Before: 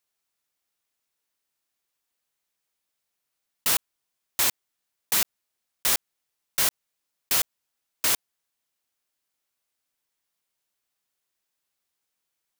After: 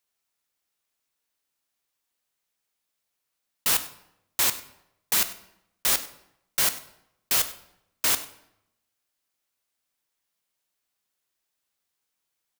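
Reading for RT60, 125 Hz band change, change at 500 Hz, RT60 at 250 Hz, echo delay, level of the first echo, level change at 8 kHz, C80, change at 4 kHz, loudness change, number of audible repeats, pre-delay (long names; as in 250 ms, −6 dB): 0.80 s, +0.5 dB, +0.5 dB, 0.90 s, 98 ms, −18.5 dB, +0.5 dB, 15.0 dB, +0.5 dB, +0.5 dB, 1, 9 ms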